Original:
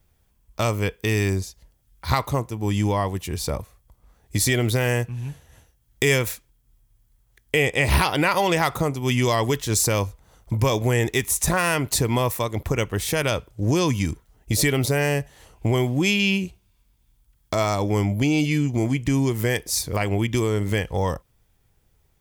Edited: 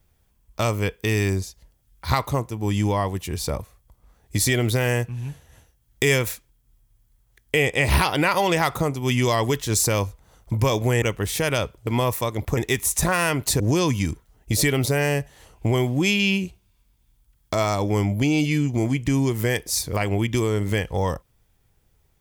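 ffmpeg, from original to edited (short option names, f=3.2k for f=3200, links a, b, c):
-filter_complex "[0:a]asplit=5[a][b][c][d][e];[a]atrim=end=11.022[f];[b]atrim=start=12.748:end=13.602[g];[c]atrim=start=12.048:end=12.752[h];[d]atrim=start=11.018:end=12.052[i];[e]atrim=start=13.598[j];[f][g]acrossfade=d=0.004:c1=hsin:c2=hsin[k];[k][h]acrossfade=d=0.004:c1=hsin:c2=hsin[l];[l][i]acrossfade=d=0.004:c1=hsin:c2=hsin[m];[m][j]acrossfade=d=0.004:c1=hsin:c2=hsin"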